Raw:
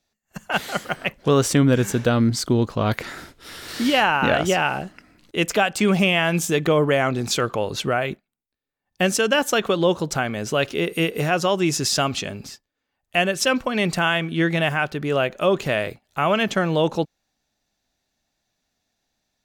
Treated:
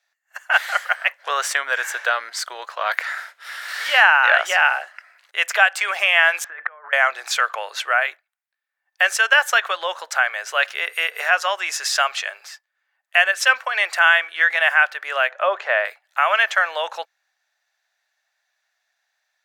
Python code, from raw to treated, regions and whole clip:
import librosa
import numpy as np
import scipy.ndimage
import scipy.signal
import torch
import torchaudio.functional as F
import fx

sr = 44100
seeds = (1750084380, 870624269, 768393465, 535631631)

y = fx.chain(x, sr, fx.ladder_lowpass(hz=1900.0, resonance_pct=45),
    fx.over_compress(threshold_db=-32.0, ratio=-0.5), at=(6.44, 6.93))
y = fx.chain(y, sr, fx.bandpass_edges(low_hz=300.0, high_hz=5500.0),
    fx.tilt_shelf(db=7.5, hz=1400.0), at=(15.31, 15.85))
y = scipy.signal.sosfilt(scipy.signal.butter(6, 610.0, 'highpass', fs=sr, output='sos'), y)
y = fx.peak_eq(y, sr, hz=1700.0, db=13.0, octaves=0.98)
y = y * librosa.db_to_amplitude(-1.5)